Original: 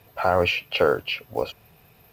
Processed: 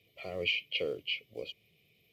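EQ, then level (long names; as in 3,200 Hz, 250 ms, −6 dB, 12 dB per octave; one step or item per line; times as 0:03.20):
formant filter i
high-shelf EQ 8,900 Hz +9.5 dB
phaser with its sweep stopped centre 640 Hz, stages 4
+8.5 dB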